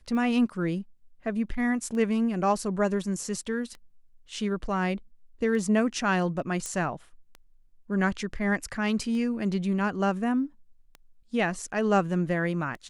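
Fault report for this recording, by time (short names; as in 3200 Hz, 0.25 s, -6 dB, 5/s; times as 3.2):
tick 33 1/3 rpm -27 dBFS
6.66 pop -19 dBFS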